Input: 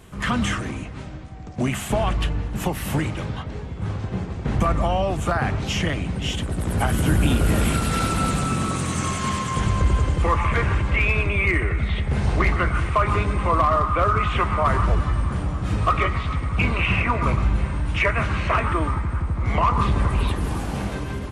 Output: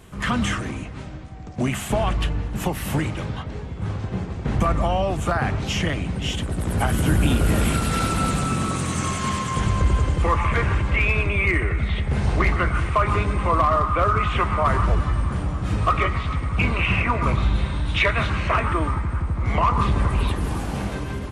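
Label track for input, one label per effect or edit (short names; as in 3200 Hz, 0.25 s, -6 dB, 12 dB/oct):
17.350000	18.300000	bell 3700 Hz +14.5 dB 0.38 oct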